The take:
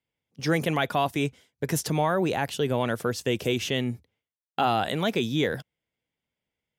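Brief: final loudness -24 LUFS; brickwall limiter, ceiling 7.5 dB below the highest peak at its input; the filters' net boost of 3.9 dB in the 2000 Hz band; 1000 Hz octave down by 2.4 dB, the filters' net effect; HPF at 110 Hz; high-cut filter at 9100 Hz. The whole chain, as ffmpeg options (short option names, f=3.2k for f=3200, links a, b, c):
-af "highpass=110,lowpass=9.1k,equalizer=f=1k:t=o:g=-5,equalizer=f=2k:t=o:g=6.5,volume=5.5dB,alimiter=limit=-12dB:level=0:latency=1"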